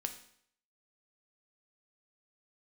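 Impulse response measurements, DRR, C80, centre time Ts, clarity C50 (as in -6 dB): 6.0 dB, 14.0 dB, 11 ms, 11.0 dB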